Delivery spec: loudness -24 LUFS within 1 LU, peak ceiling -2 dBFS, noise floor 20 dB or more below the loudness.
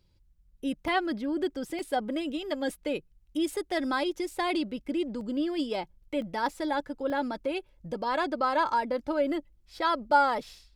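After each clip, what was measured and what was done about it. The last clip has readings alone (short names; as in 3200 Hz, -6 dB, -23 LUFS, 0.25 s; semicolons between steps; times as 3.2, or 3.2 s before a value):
dropouts 5; longest dropout 1.4 ms; loudness -30.5 LUFS; peak -11.0 dBFS; loudness target -24.0 LUFS
-> interpolate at 0.88/1.79/5.21/6.22/7.1, 1.4 ms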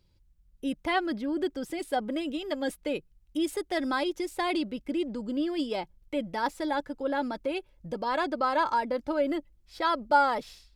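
dropouts 0; loudness -30.5 LUFS; peak -11.0 dBFS; loudness target -24.0 LUFS
-> gain +6.5 dB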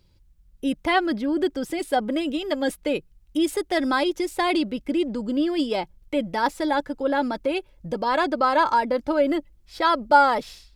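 loudness -24.0 LUFS; peak -4.5 dBFS; noise floor -58 dBFS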